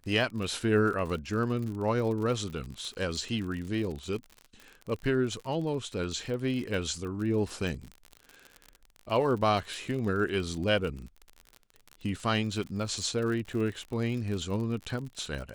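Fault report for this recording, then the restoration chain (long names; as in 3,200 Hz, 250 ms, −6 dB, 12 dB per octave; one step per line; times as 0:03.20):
surface crackle 51 per second −35 dBFS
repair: click removal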